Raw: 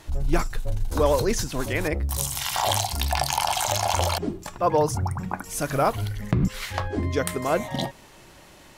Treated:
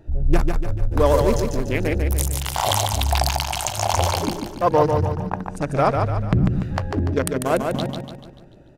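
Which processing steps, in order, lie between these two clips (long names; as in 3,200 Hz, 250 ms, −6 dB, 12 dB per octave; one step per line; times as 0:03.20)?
adaptive Wiener filter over 41 samples
0:03.23–0:03.78: compressor whose output falls as the input rises −31 dBFS, ratio −0.5
0:05.47–0:05.92: low-pass filter 9,400 Hz → 4,900 Hz 12 dB per octave
repeating echo 146 ms, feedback 47%, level −5 dB
level +4 dB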